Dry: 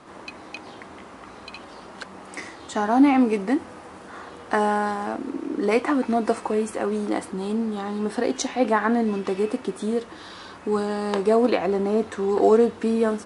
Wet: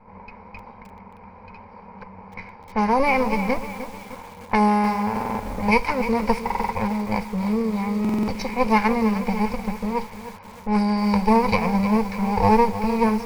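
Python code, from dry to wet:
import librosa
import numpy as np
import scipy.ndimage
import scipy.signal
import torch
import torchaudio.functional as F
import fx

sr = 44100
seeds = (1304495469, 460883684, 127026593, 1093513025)

p1 = fx.lower_of_two(x, sr, delay_ms=1.3)
p2 = fx.ripple_eq(p1, sr, per_octave=0.86, db=16)
p3 = fx.env_lowpass(p2, sr, base_hz=1000.0, full_db=-15.5)
p4 = fx.high_shelf(p3, sr, hz=8900.0, db=-5.0)
p5 = p4 + fx.echo_wet_bandpass(p4, sr, ms=309, feedback_pct=62, hz=1600.0, wet_db=-22, dry=0)
p6 = fx.buffer_glitch(p5, sr, at_s=(5.12, 6.45, 8.0), block=2048, repeats=5)
y = fx.echo_crushed(p6, sr, ms=306, feedback_pct=55, bits=6, wet_db=-11.0)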